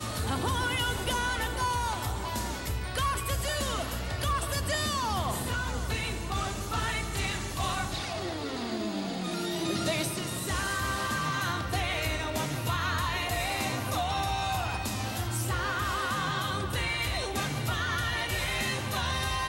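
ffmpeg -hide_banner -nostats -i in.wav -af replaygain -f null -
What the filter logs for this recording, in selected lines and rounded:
track_gain = +13.2 dB
track_peak = 0.084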